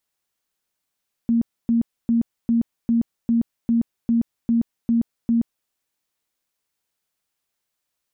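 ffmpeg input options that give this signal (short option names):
-f lavfi -i "aevalsrc='0.178*sin(2*PI*232*mod(t,0.4))*lt(mod(t,0.4),29/232)':d=4.4:s=44100"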